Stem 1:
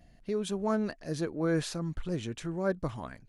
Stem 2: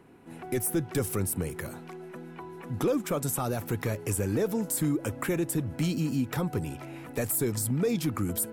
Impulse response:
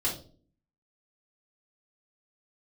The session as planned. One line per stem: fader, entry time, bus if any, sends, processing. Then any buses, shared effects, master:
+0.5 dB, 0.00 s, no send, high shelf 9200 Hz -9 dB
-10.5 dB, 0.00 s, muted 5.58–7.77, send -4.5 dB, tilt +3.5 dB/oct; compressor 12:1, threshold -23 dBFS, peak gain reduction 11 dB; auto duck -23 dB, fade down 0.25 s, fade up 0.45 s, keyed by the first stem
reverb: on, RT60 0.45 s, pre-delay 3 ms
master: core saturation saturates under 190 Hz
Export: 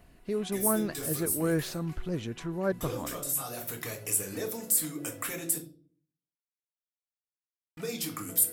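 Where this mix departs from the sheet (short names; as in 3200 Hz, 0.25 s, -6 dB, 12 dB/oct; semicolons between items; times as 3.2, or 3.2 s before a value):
stem 2: missing compressor 12:1, threshold -23 dBFS, peak gain reduction 11 dB; master: missing core saturation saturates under 190 Hz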